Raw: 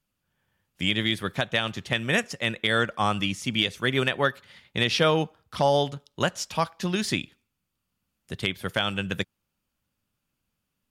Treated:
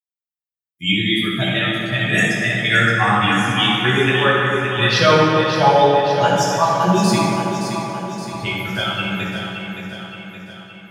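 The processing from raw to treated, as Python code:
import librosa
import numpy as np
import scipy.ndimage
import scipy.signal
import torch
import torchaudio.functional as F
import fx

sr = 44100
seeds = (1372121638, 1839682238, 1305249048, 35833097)

p1 = fx.bin_expand(x, sr, power=2.0)
p2 = scipy.signal.sosfilt(scipy.signal.butter(2, 130.0, 'highpass', fs=sr, output='sos'), p1)
p3 = p2 + fx.echo_feedback(p2, sr, ms=570, feedback_pct=55, wet_db=-8, dry=0)
p4 = fx.rev_fdn(p3, sr, rt60_s=2.9, lf_ratio=1.0, hf_ratio=0.5, size_ms=48.0, drr_db=-9.5)
y = F.gain(torch.from_numpy(p4), 4.0).numpy()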